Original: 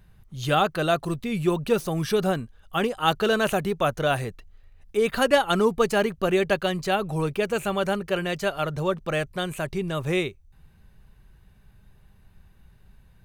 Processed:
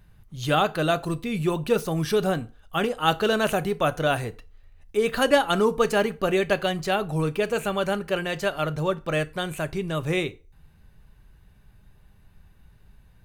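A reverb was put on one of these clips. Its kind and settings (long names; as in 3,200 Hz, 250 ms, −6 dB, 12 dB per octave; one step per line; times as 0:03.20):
feedback delay network reverb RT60 0.35 s, low-frequency decay 0.85×, high-frequency decay 0.8×, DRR 11.5 dB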